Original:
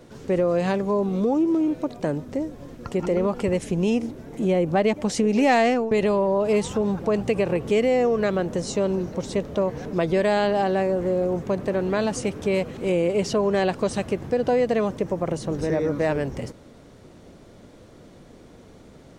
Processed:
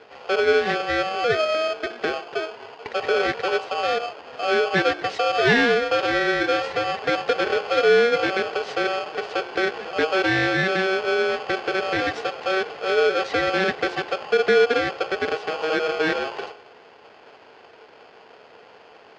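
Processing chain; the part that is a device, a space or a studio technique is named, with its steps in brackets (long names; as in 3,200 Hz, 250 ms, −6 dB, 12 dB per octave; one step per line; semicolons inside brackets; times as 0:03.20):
hum removal 59.17 Hz, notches 11
ring modulator pedal into a guitar cabinet (ring modulator with a square carrier 950 Hz; loudspeaker in its box 91–4,400 Hz, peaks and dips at 440 Hz +9 dB, 1,200 Hz −9 dB, 1,900 Hz +6 dB, 3,200 Hz −3 dB)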